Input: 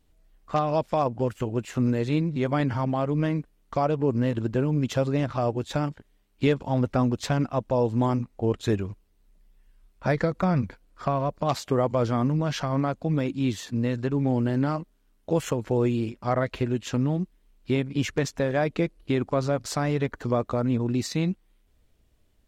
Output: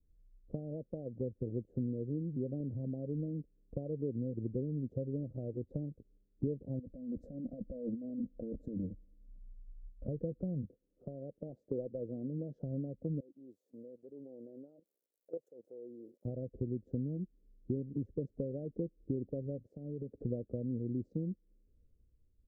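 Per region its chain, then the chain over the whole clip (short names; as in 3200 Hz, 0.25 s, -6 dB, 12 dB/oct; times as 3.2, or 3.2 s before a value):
6.79–10.08 fixed phaser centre 590 Hz, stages 8 + negative-ratio compressor -35 dBFS
10.65–12.63 HPF 350 Hz 6 dB/oct + hard clip -19 dBFS
13.2–16.25 switching spikes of -27 dBFS + HPF 730 Hz + level quantiser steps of 15 dB
19.63–20.19 HPF 110 Hz + compressor, threshold -36 dBFS
whole clip: compressor 5:1, threshold -37 dBFS; elliptic low-pass 520 Hz, stop band 50 dB; three-band expander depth 40%; gain +2 dB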